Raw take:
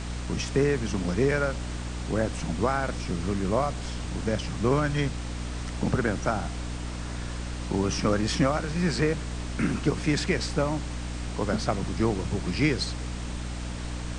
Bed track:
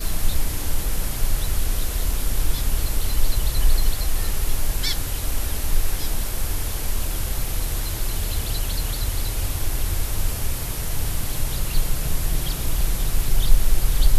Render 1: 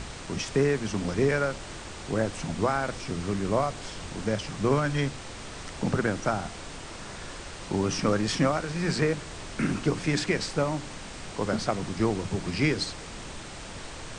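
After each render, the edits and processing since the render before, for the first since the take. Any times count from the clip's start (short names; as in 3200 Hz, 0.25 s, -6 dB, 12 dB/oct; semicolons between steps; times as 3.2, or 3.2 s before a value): notches 60/120/180/240/300 Hz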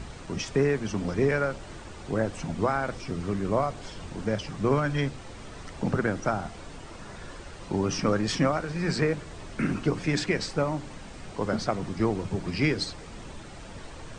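denoiser 8 dB, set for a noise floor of -41 dBFS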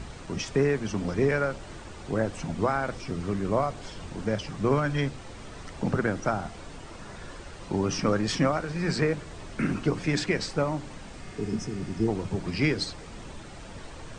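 11.27–12.06 spectral repair 460–5000 Hz before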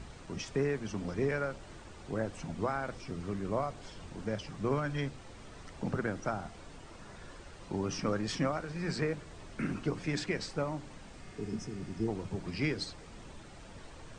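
gain -7.5 dB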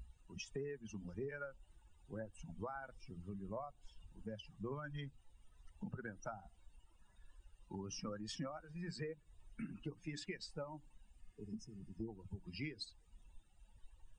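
per-bin expansion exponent 2; compressor 3:1, threshold -44 dBFS, peak gain reduction 11 dB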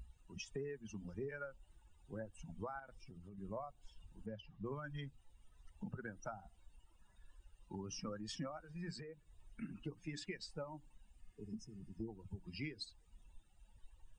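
2.79–3.38 compressor, threshold -51 dBFS; 4.26–4.66 air absorption 180 m; 8.97–9.62 compressor, threshold -47 dBFS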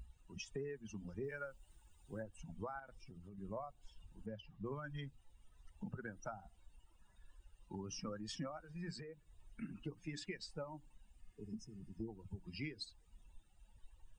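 1.24–2.23 high shelf 4100 Hz +9 dB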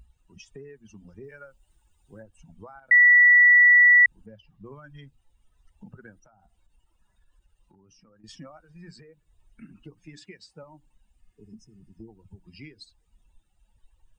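2.91–4.06 bleep 1950 Hz -11.5 dBFS; 6.18–8.24 compressor, threshold -56 dBFS; 10.2–10.63 HPF 64 Hz 24 dB/oct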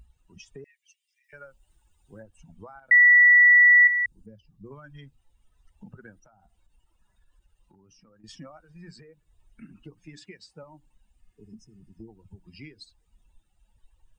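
0.64–1.33 steep high-pass 1900 Hz 96 dB/oct; 3.87–4.71 band shelf 1400 Hz -9.5 dB 2.8 oct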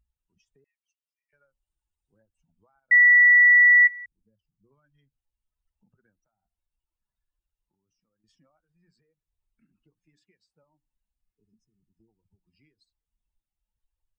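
upward expander 2.5:1, over -29 dBFS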